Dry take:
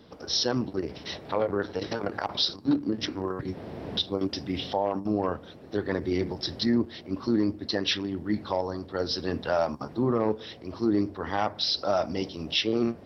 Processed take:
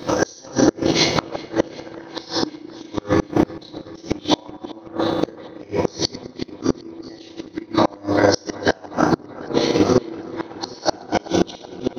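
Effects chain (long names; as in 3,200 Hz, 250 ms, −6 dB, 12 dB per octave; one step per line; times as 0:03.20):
every bin's largest magnitude spread in time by 60 ms
high-pass filter 99 Hz 6 dB per octave
downward compressor 3 to 1, threshold −31 dBFS, peak gain reduction 10.5 dB
feedback delay network reverb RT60 2.1 s, low-frequency decay 1.05×, high-frequency decay 0.5×, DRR −2.5 dB
transient designer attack +12 dB, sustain −7 dB
tuned comb filter 230 Hz, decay 1 s, mix 50%
gate with flip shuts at −21 dBFS, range −30 dB
speed change +9%
on a send: delay with a low-pass on its return 378 ms, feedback 69%, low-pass 4,000 Hz, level −20 dB
on the sum: boost into a limiter +20 dB
level −1 dB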